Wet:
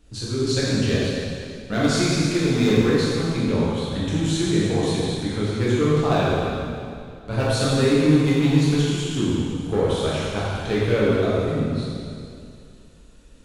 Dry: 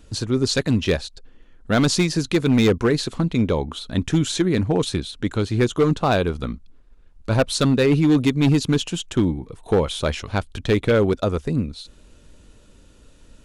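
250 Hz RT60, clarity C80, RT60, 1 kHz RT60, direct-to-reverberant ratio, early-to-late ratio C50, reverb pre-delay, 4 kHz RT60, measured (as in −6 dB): 2.5 s, −1.5 dB, 2.4 s, 2.4 s, −8.5 dB, −3.5 dB, 6 ms, 2.2 s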